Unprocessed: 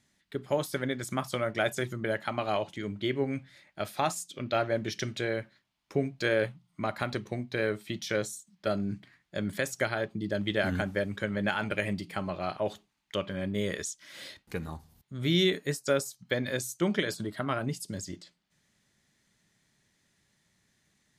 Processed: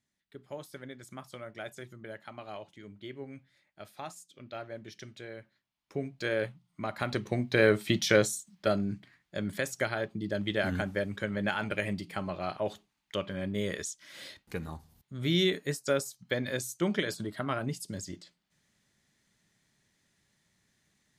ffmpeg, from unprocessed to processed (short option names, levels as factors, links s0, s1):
-af "volume=2.66,afade=t=in:st=5.35:d=1.05:silence=0.334965,afade=t=in:st=6.9:d=0.99:silence=0.251189,afade=t=out:st=7.89:d=1.07:silence=0.316228"